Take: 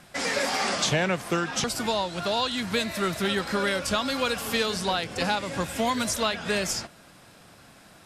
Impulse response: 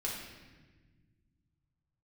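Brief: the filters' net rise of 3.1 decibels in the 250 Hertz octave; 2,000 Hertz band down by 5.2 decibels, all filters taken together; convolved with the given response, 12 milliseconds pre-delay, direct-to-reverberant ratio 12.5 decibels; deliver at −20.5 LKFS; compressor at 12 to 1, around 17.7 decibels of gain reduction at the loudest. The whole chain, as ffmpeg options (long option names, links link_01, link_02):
-filter_complex "[0:a]equalizer=frequency=250:width_type=o:gain=4,equalizer=frequency=2000:width_type=o:gain=-7,acompressor=threshold=-39dB:ratio=12,asplit=2[link_01][link_02];[1:a]atrim=start_sample=2205,adelay=12[link_03];[link_02][link_03]afir=irnorm=-1:irlink=0,volume=-15.5dB[link_04];[link_01][link_04]amix=inputs=2:normalize=0,volume=22dB"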